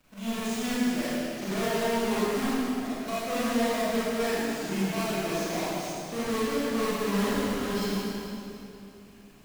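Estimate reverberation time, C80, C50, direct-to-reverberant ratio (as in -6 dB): 2.8 s, -3.5 dB, -6.0 dB, -10.5 dB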